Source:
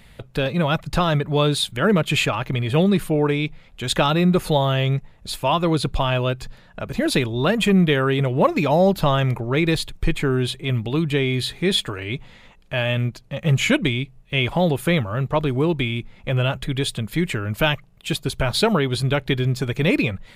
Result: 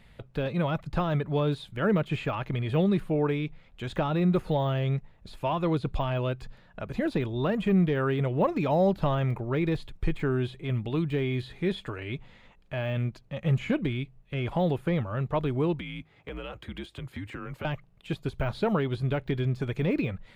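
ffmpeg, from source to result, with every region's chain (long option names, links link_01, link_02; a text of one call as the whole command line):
ffmpeg -i in.wav -filter_complex "[0:a]asettb=1/sr,asplit=3[link_01][link_02][link_03];[link_01]atrim=end=15.794[link_04];[link_02]atrim=start=15.79:end=17.65,asetpts=PTS-STARTPTS,afade=type=in:duration=0.004:curve=qsin,afade=type=out:start_time=1.856:duration=0.004:curve=qsin,highpass=frequency=170:width=0.5412,highpass=frequency=170:width=1.3066,acompressor=threshold=-25dB:ratio=12:attack=3.2:release=140:knee=1:detection=peak,afreqshift=-73[link_05];[link_03]atrim=start=17.646[link_06];[link_04][link_05]acrossfade=duration=0.004:curve1=hsin:curve2=qsin[link_07];[link_07][link_06]acrossfade=duration=0.004:curve1=qsin:curve2=hsin,deesser=0.9,highshelf=frequency=5200:gain=-10.5,volume=-6.5dB" out.wav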